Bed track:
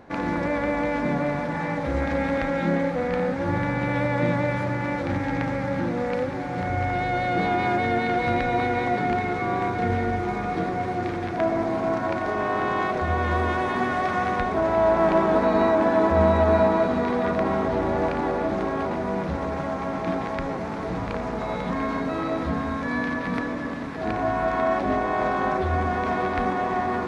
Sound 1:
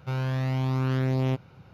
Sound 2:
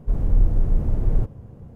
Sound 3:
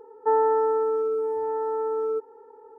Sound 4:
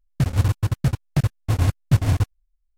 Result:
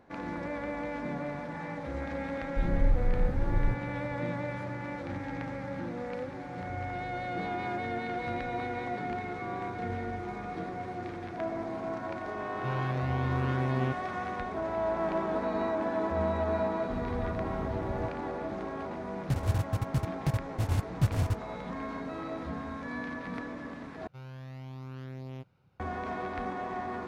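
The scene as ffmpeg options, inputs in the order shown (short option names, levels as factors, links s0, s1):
-filter_complex "[2:a]asplit=2[s0][s1];[1:a]asplit=2[s2][s3];[0:a]volume=0.282[s4];[s2]acrossover=split=3600[s5][s6];[s6]acompressor=threshold=0.00141:ratio=4:attack=1:release=60[s7];[s5][s7]amix=inputs=2:normalize=0[s8];[s1]highpass=f=51:w=0.5412,highpass=f=51:w=1.3066[s9];[s4]asplit=2[s10][s11];[s10]atrim=end=24.074[s12];[s3]atrim=end=1.73,asetpts=PTS-STARTPTS,volume=0.15[s13];[s11]atrim=start=25.796[s14];[s0]atrim=end=1.75,asetpts=PTS-STARTPTS,volume=0.398,afade=t=in:d=0.004:c=hsin,afade=t=out:st=1.746:d=0.004:c=hsin,adelay=2490[s15];[s8]atrim=end=1.73,asetpts=PTS-STARTPTS,volume=0.562,afade=t=in:d=0.004:c=hsin,afade=t=out:st=1.726:d=0.004:c=hsin,adelay=12570[s16];[s9]atrim=end=1.75,asetpts=PTS-STARTPTS,volume=0.266,afade=t=in:d=0.004:c=hsin,afade=t=out:st=1.746:d=0.004:c=hsin,adelay=16820[s17];[4:a]atrim=end=2.77,asetpts=PTS-STARTPTS,volume=0.335,afade=t=in:d=0.004:c=hsin,afade=t=out:st=2.766:d=0.004:c=hsin,adelay=19100[s18];[s12][s13]acrossfade=d=0.004:c1=hsin:c2=hsin[s19];[s19][s14]acrossfade=d=0.004:c1=hsin:c2=hsin[s20];[s20][s15][s16][s17][s18]amix=inputs=5:normalize=0"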